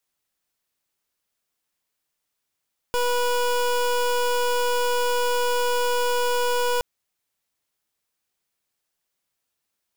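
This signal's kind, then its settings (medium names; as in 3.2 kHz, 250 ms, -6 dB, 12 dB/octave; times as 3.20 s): pulse 488 Hz, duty 24% -22 dBFS 3.87 s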